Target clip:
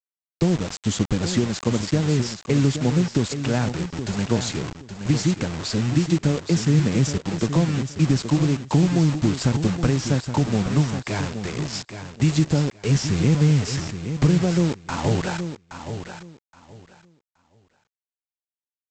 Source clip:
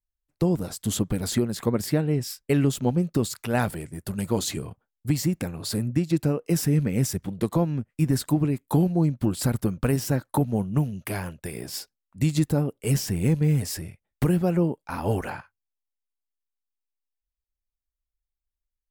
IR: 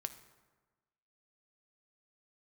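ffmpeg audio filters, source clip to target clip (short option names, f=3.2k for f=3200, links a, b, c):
-filter_complex "[0:a]acrossover=split=260[a][b];[b]acompressor=threshold=-27dB:ratio=10[c];[a][c]amix=inputs=2:normalize=0,aresample=16000,acrusher=bits=5:mix=0:aa=0.000001,aresample=44100,aecho=1:1:822|1644|2466:0.335|0.0703|0.0148,volume=4dB"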